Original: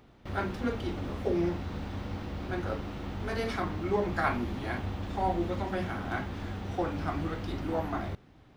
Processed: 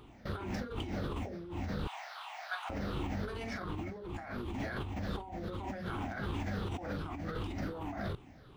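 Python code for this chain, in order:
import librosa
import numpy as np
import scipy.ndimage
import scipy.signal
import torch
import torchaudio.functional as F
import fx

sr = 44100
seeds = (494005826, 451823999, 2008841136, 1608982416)

y = fx.spec_ripple(x, sr, per_octave=0.64, drift_hz=-2.7, depth_db=11)
y = fx.cheby1_highpass(y, sr, hz=670.0, order=6, at=(1.87, 2.7))
y = fx.over_compress(y, sr, threshold_db=-36.0, ratio=-1.0)
y = F.gain(torch.from_numpy(y), -3.0).numpy()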